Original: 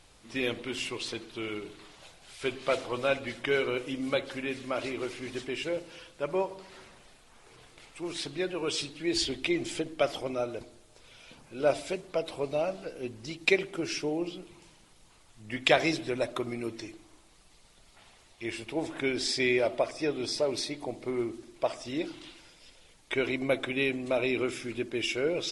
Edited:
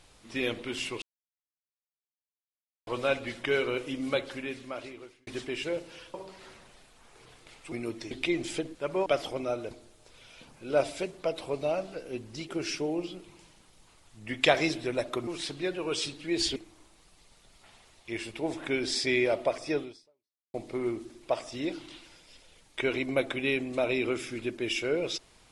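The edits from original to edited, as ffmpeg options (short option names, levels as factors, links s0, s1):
-filter_complex "[0:a]asplit=13[s0][s1][s2][s3][s4][s5][s6][s7][s8][s9][s10][s11][s12];[s0]atrim=end=1.02,asetpts=PTS-STARTPTS,afade=t=out:st=1.016:d=0.004:c=hsin[s13];[s1]atrim=start=1.02:end=2.87,asetpts=PTS-STARTPTS,volume=0[s14];[s2]atrim=start=2.87:end=5.27,asetpts=PTS-STARTPTS,afade=t=in:d=0.004:c=hsin,afade=t=out:st=1.33:d=1.07[s15];[s3]atrim=start=5.27:end=6.142,asetpts=PTS-STARTPTS,afade=t=in:d=0.004:c=hsin[s16];[s4]atrim=start=6.448:end=8.032[s17];[s5]atrim=start=16.498:end=16.892[s18];[s6]atrim=start=9.318:end=9.962[s19];[s7]atrim=start=6.138:end=6.452[s20];[s8]atrim=start=9.958:end=13.392[s21];[s9]atrim=start=13.718:end=16.502[s22];[s10]atrim=start=8.028:end=9.322[s23];[s11]atrim=start=16.888:end=20.87,asetpts=PTS-STARTPTS,afade=t=out:st=3.252:d=0.73:c=exp[s24];[s12]atrim=start=20.87,asetpts=PTS-STARTPTS,afade=t=in:d=0.004:c=hsin[s25];[s13][s14][s15][s16]concat=n=4:v=0:a=1[s26];[s26][s17]acrossfade=d=0.004:c1=hsin:c2=hsin[s27];[s27][s18]acrossfade=d=0.004:c1=hsin:c2=hsin[s28];[s28][s19]acrossfade=d=0.004:c1=hsin:c2=hsin[s29];[s29][s20]acrossfade=d=0.004:c1=hsin:c2=hsin[s30];[s30][s21]acrossfade=d=0.004:c1=hsin:c2=hsin[s31];[s31][s22]acrossfade=d=0.004:c1=hsin:c2=hsin[s32];[s32][s23]acrossfade=d=0.004:c1=hsin:c2=hsin[s33];[s24][s25]concat=n=2:v=0:a=1[s34];[s33][s34]acrossfade=d=0.004:c1=hsin:c2=hsin"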